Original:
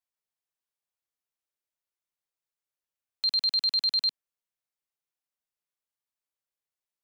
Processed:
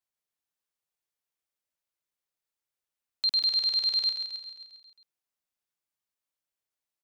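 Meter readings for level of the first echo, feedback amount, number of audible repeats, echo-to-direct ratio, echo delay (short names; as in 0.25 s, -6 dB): -7.0 dB, 58%, 6, -5.0 dB, 0.134 s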